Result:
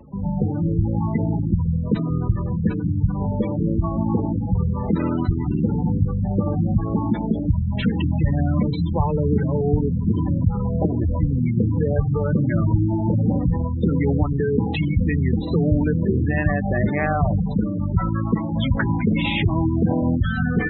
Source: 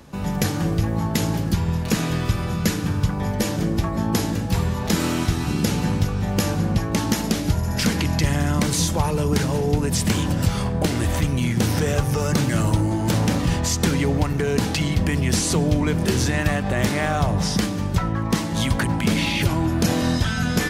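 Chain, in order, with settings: brick-wall FIR low-pass 4100 Hz; spectral gate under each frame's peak -15 dB strong; gain +1.5 dB

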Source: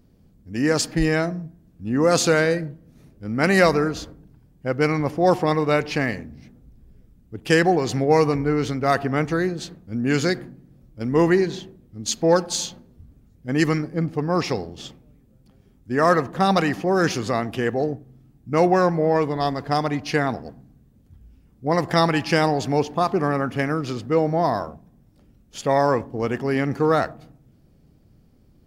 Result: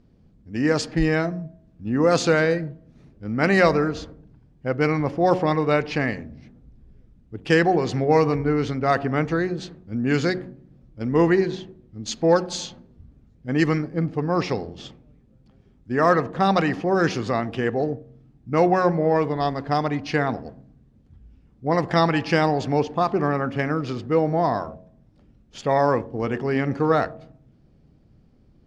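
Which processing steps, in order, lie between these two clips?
air absorption 100 m; de-hum 92.25 Hz, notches 7

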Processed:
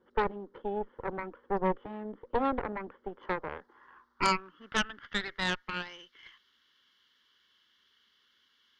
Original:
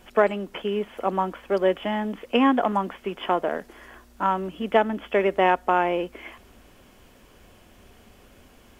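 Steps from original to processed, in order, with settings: band-pass sweep 520 Hz -> 3000 Hz, 2.93–6.02; fixed phaser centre 2500 Hz, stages 6; added harmonics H 8 -11 dB, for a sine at -14.5 dBFS

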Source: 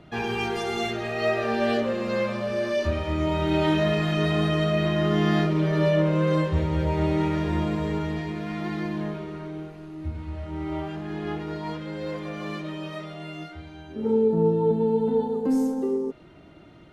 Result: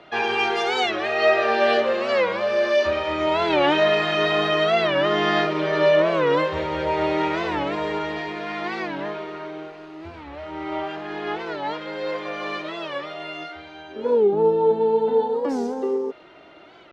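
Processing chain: three-band isolator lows -21 dB, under 390 Hz, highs -21 dB, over 5900 Hz; record warp 45 rpm, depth 160 cents; gain +8 dB

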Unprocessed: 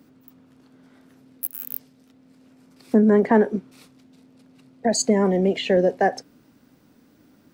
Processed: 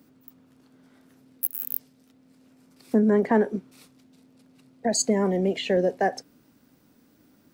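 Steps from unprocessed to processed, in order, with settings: high shelf 7000 Hz +6.5 dB; gain -4 dB

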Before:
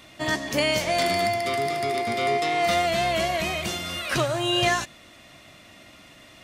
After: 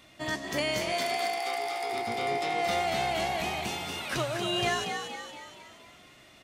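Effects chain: 0.92–1.92 HPF 480 Hz 12 dB/oct; frequency-shifting echo 0.234 s, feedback 52%, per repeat +61 Hz, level -6 dB; gain -7 dB

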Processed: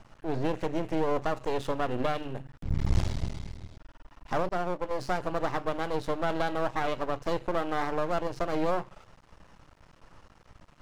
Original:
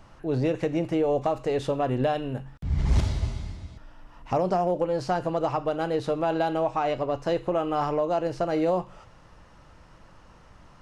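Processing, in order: 4.49–4.91 expander -20 dBFS; half-wave rectifier

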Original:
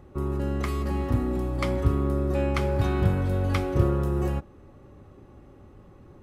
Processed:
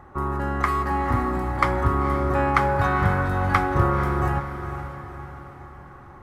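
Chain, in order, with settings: band shelf 1200 Hz +13.5 dB; diffused feedback echo 0.497 s, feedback 50%, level -9.5 dB

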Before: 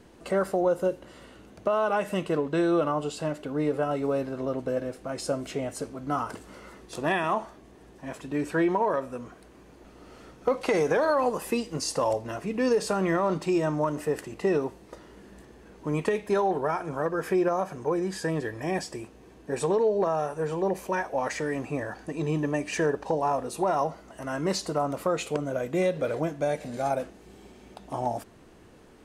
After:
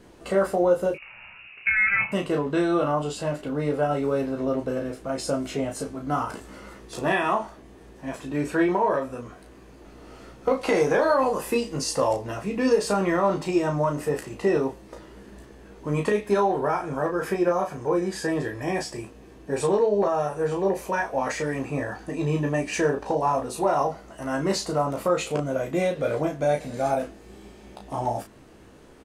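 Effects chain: 0.94–2.12 inverted band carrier 2800 Hz; early reflections 15 ms -5.5 dB, 34 ms -5 dB; gain +1 dB

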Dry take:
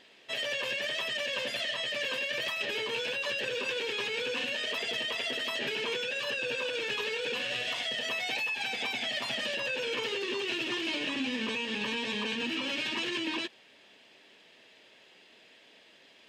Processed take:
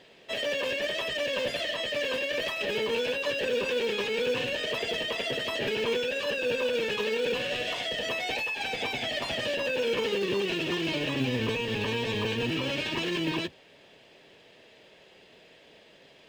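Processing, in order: octaver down 1 oct, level +1 dB; bell 490 Hz +8 dB 1.5 oct; in parallel at -9 dB: short-mantissa float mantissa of 2-bit; on the sum: gain -2.5 dB

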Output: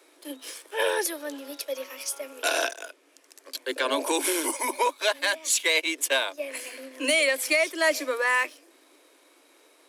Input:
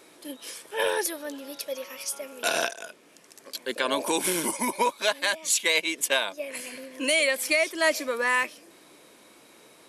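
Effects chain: sample leveller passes 1; Chebyshev high-pass 260 Hz, order 10; gain -2.5 dB

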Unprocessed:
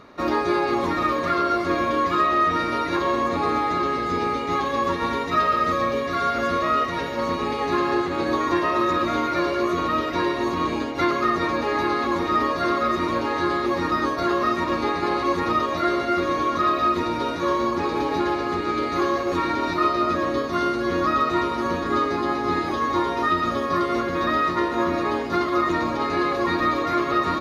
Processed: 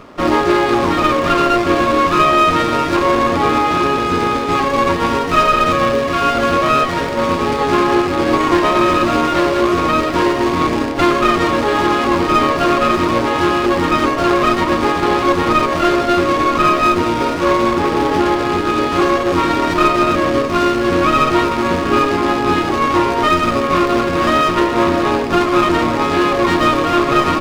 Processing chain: rattling part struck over -32 dBFS, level -24 dBFS; running maximum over 9 samples; gain +9 dB

